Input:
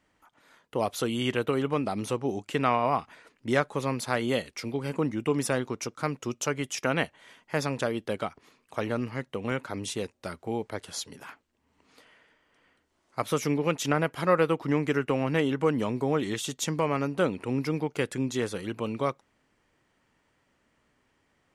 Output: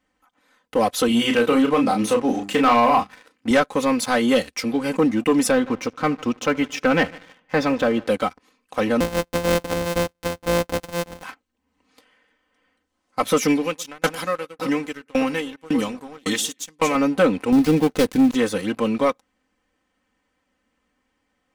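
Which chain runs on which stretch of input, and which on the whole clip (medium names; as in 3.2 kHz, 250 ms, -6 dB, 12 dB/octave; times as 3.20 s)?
1.08–3.51 s: high-pass 58 Hz 24 dB/octave + hum notches 50/100/150/200/250/300/350/400 Hz + doubling 34 ms -6 dB
5.51–8.07 s: low-pass 3.5 kHz + peaking EQ 88 Hz +5 dB 1.2 oct + multi-head delay 75 ms, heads first and second, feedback 42%, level -23 dB
9.00–11.23 s: sorted samples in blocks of 256 samples + peaking EQ 540 Hz +6.5 dB 0.38 oct
13.48–16.95 s: treble shelf 2.3 kHz +11.5 dB + echo whose repeats swap between lows and highs 114 ms, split 1.7 kHz, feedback 54%, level -13 dB + sawtooth tremolo in dB decaying 1.8 Hz, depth 29 dB
17.52–18.35 s: dead-time distortion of 0.19 ms + bass shelf 270 Hz +8.5 dB
whole clip: comb 3.9 ms, depth 82%; waveshaping leveller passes 2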